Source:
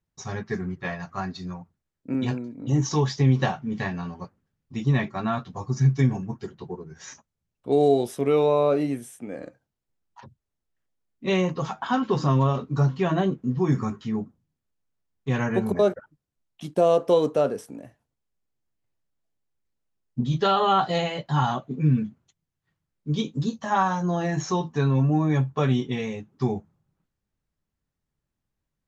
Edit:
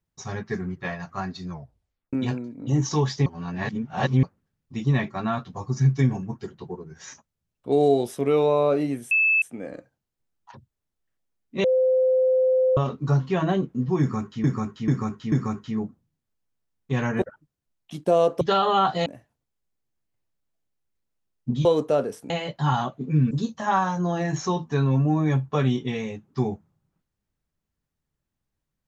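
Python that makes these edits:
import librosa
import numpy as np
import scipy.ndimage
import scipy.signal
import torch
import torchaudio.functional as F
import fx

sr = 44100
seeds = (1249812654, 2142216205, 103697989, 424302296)

y = fx.edit(x, sr, fx.tape_stop(start_s=1.5, length_s=0.63),
    fx.reverse_span(start_s=3.26, length_s=0.97),
    fx.insert_tone(at_s=9.11, length_s=0.31, hz=2620.0, db=-16.5),
    fx.bleep(start_s=11.33, length_s=1.13, hz=516.0, db=-16.5),
    fx.repeat(start_s=13.69, length_s=0.44, count=4),
    fx.cut(start_s=15.59, length_s=0.33),
    fx.swap(start_s=17.11, length_s=0.65, other_s=20.35, other_length_s=0.65),
    fx.cut(start_s=22.01, length_s=1.34), tone=tone)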